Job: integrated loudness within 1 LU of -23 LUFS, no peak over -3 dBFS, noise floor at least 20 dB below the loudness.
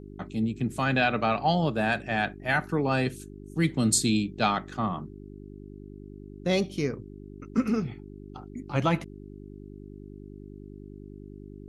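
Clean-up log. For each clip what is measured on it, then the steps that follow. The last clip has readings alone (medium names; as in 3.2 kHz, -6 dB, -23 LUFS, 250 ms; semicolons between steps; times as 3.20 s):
hum 50 Hz; highest harmonic 400 Hz; hum level -41 dBFS; loudness -27.5 LUFS; peak level -9.5 dBFS; loudness target -23.0 LUFS
-> de-hum 50 Hz, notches 8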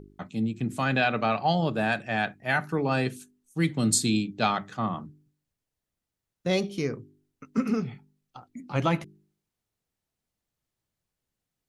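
hum not found; loudness -27.5 LUFS; peak level -9.0 dBFS; loudness target -23.0 LUFS
-> trim +4.5 dB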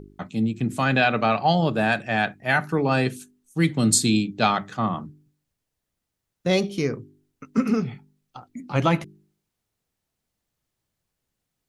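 loudness -23.0 LUFS; peak level -4.5 dBFS; noise floor -82 dBFS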